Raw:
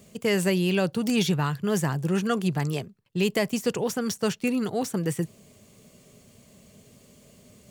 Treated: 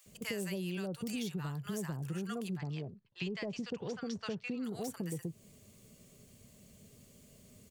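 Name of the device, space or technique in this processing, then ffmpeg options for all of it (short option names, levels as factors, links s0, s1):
ASMR close-microphone chain: -filter_complex "[0:a]asettb=1/sr,asplit=3[s0][s1][s2];[s0]atrim=end=2.574[s3];[s1]atrim=start=2.57:end=4.64,asetpts=PTS-STARTPTS,afade=t=in:d=0.004:c=qsin,afade=t=out:st=2.066:d=0.004:c=qsin,lowpass=f=5100:w=0.5412,lowpass=f=5100:w=1.3066[s4];[s2]atrim=start=4.636[s5];[s3][s4]acrossfade=d=0.004:c1=hsin:c2=qsin[s6];[s6][s5]acrossfade=d=0.004:c1=qsin:c2=hsin,lowshelf=f=110:g=7.5,acrossover=split=870[s7][s8];[s7]adelay=60[s9];[s9][s8]amix=inputs=2:normalize=0,acompressor=threshold=0.0398:ratio=6,highshelf=f=8100:g=6.5,volume=0.422"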